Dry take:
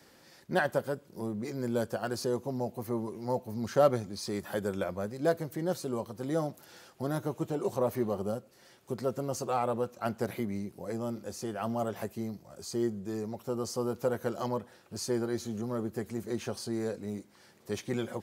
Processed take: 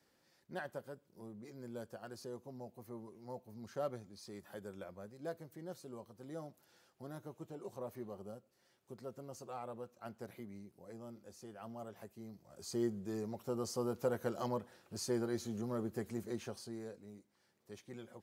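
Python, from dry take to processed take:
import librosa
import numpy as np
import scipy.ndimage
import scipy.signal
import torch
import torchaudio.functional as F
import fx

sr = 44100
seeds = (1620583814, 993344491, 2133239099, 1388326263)

y = fx.gain(x, sr, db=fx.line((12.18, -15.5), (12.7, -5.0), (16.17, -5.0), (17.13, -17.0)))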